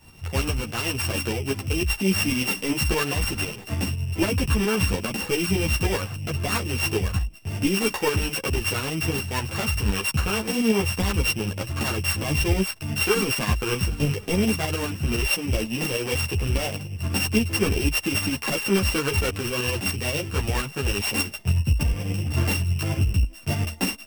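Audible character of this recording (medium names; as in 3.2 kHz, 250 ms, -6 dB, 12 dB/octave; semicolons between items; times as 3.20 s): a buzz of ramps at a fixed pitch in blocks of 16 samples; tremolo saw up 9.9 Hz, depth 55%; a shimmering, thickened sound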